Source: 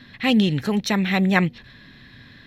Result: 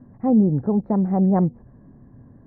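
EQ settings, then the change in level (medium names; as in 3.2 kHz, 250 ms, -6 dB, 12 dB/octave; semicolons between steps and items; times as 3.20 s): inverse Chebyshev low-pass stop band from 2.9 kHz, stop band 60 dB; distance through air 94 m; +2.0 dB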